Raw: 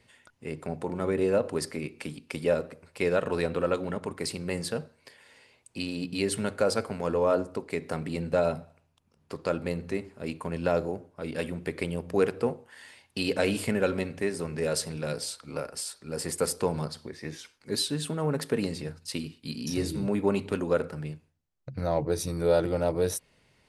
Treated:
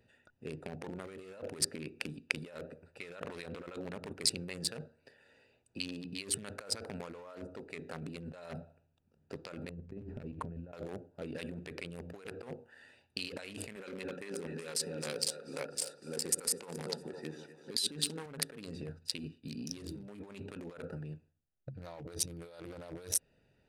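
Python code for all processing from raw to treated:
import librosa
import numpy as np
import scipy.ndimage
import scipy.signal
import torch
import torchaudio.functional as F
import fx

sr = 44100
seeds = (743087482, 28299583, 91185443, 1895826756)

y = fx.chain(x, sr, fx.riaa(side='playback'),
    fx.over_compress(threshold_db=-31.0, ratio=-0.5), at=(9.69, 10.73))
y = fx.chain(y, sr, fx.highpass(hz=180.0, slope=12),
    fx.notch(hz=640.0, q=7.1),
    fx.echo_split(split_hz=440.0, low_ms=120, high_ms=251, feedback_pct=52, wet_db=-10), at=(13.76, 18.26))
y = fx.wiener(y, sr, points=41)
y = fx.over_compress(y, sr, threshold_db=-37.0, ratio=-1.0)
y = fx.tilt_shelf(y, sr, db=-8.0, hz=900.0)
y = F.gain(torch.from_numpy(y), -2.0).numpy()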